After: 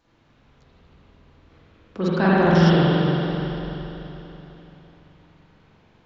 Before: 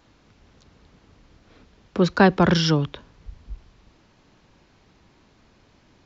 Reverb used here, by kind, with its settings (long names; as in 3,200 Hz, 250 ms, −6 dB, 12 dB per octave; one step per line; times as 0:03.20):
spring reverb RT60 3.6 s, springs 42/48 ms, chirp 35 ms, DRR −9.5 dB
level −9 dB